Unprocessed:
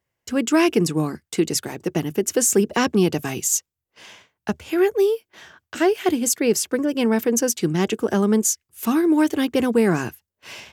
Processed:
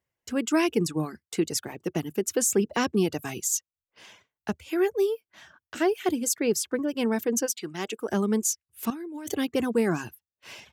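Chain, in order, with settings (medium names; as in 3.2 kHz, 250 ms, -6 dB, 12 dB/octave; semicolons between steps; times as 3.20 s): 7.45–8.10 s: high-pass 960 Hz -> 440 Hz 6 dB/octave; reverb removal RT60 0.57 s; 8.90–9.35 s: compressor with a negative ratio -30 dBFS, ratio -1; trim -5.5 dB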